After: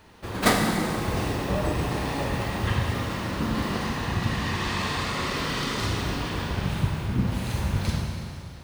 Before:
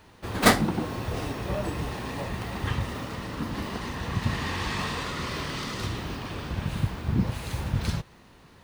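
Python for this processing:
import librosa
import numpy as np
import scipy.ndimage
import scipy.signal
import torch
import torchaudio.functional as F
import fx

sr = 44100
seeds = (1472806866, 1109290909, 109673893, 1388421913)

y = fx.rider(x, sr, range_db=3, speed_s=0.5)
y = fx.rev_schroeder(y, sr, rt60_s=2.4, comb_ms=32, drr_db=1.0)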